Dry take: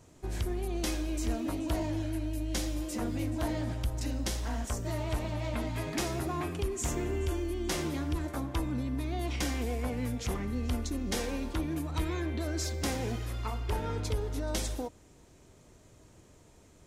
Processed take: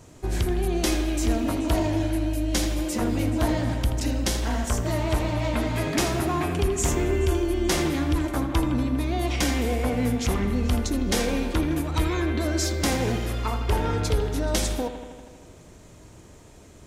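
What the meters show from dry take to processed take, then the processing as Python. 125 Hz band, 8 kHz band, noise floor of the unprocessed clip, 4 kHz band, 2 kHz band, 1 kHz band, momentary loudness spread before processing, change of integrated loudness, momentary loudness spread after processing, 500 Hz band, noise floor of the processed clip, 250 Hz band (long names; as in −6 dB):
+8.0 dB, +8.5 dB, −58 dBFS, +9.0 dB, +9.5 dB, +9.0 dB, 2 LU, +8.5 dB, 2 LU, +9.5 dB, −48 dBFS, +9.0 dB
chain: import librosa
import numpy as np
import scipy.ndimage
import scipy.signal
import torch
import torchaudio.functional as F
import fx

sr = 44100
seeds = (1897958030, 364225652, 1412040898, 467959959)

y = fx.echo_bbd(x, sr, ms=80, stages=2048, feedback_pct=74, wet_db=-10.0)
y = y * 10.0 ** (8.5 / 20.0)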